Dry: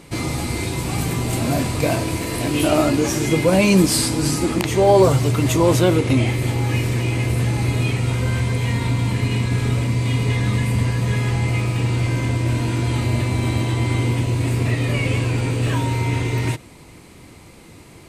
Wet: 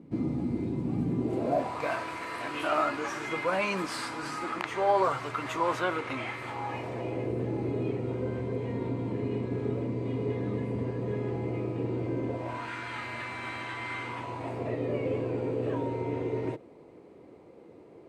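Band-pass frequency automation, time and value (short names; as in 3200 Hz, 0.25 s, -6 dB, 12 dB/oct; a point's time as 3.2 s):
band-pass, Q 2.1
1.12 s 240 Hz
1.9 s 1300 Hz
6.4 s 1300 Hz
7.35 s 400 Hz
12.25 s 400 Hz
12.7 s 1500 Hz
13.99 s 1500 Hz
14.82 s 460 Hz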